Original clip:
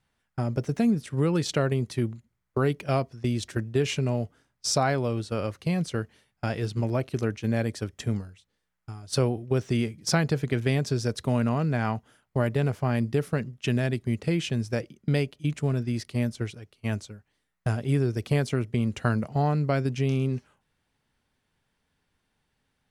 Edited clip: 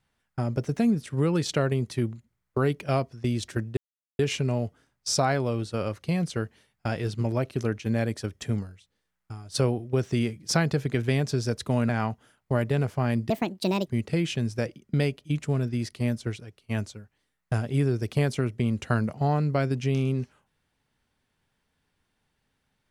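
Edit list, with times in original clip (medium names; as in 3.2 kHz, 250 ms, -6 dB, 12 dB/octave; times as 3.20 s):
3.77 s: insert silence 0.42 s
11.47–11.74 s: delete
13.15–14.01 s: speed 152%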